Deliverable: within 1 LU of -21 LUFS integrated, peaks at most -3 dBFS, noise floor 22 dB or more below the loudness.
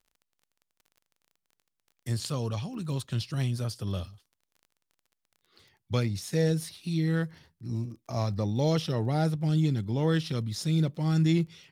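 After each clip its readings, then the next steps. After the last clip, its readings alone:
tick rate 24 per s; loudness -29.5 LUFS; peak level -14.5 dBFS; loudness target -21.0 LUFS
-> de-click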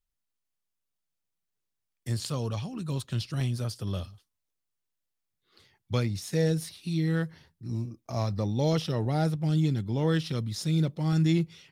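tick rate 0 per s; loudness -29.5 LUFS; peak level -14.5 dBFS; loudness target -21.0 LUFS
-> trim +8.5 dB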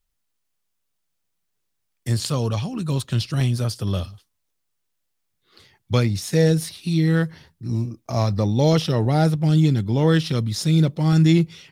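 loudness -21.0 LUFS; peak level -6.0 dBFS; noise floor -75 dBFS

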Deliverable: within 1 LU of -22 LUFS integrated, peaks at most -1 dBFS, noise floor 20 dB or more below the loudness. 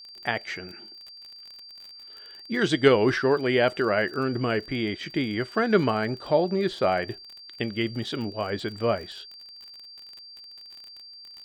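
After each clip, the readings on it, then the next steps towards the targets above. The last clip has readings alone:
tick rate 35 per s; steady tone 4.7 kHz; tone level -43 dBFS; loudness -25.5 LUFS; peak level -5.0 dBFS; loudness target -22.0 LUFS
-> de-click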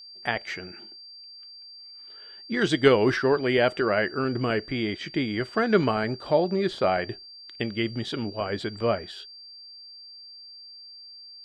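tick rate 0 per s; steady tone 4.7 kHz; tone level -43 dBFS
-> band-stop 4.7 kHz, Q 30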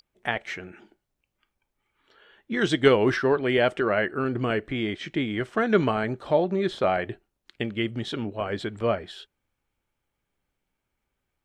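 steady tone not found; loudness -25.5 LUFS; peak level -5.0 dBFS; loudness target -22.0 LUFS
-> trim +3.5 dB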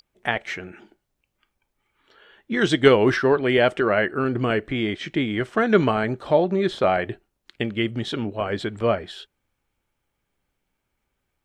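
loudness -22.0 LUFS; peak level -1.5 dBFS; noise floor -78 dBFS

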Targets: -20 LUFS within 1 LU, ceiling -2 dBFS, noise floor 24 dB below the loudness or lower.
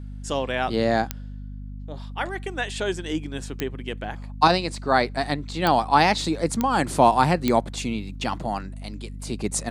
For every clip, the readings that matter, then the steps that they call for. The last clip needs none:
clicks found 5; hum 50 Hz; highest harmonic 250 Hz; hum level -33 dBFS; loudness -24.0 LUFS; peak level -3.0 dBFS; loudness target -20.0 LUFS
-> de-click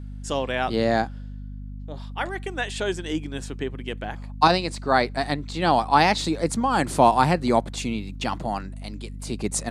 clicks found 0; hum 50 Hz; highest harmonic 250 Hz; hum level -33 dBFS
-> de-hum 50 Hz, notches 5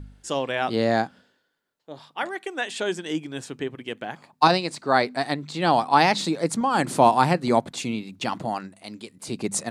hum not found; loudness -24.0 LUFS; peak level -2.5 dBFS; loudness target -20.0 LUFS
-> trim +4 dB; peak limiter -2 dBFS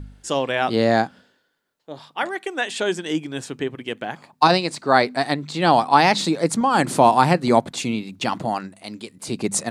loudness -20.5 LUFS; peak level -2.0 dBFS; noise floor -67 dBFS

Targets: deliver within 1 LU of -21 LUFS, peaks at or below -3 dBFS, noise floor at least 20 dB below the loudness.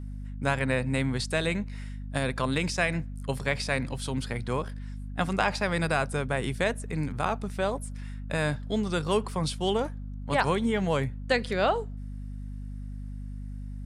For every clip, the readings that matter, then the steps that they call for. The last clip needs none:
hum 50 Hz; highest harmonic 250 Hz; hum level -34 dBFS; loudness -29.0 LUFS; peak level -9.5 dBFS; loudness target -21.0 LUFS
-> hum notches 50/100/150/200/250 Hz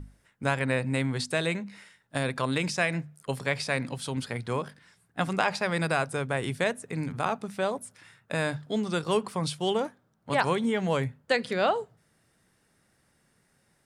hum not found; loudness -29.5 LUFS; peak level -9.5 dBFS; loudness target -21.0 LUFS
-> trim +8.5 dB; peak limiter -3 dBFS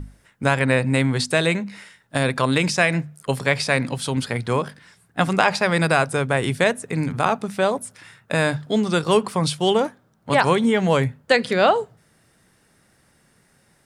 loudness -21.0 LUFS; peak level -3.0 dBFS; noise floor -61 dBFS

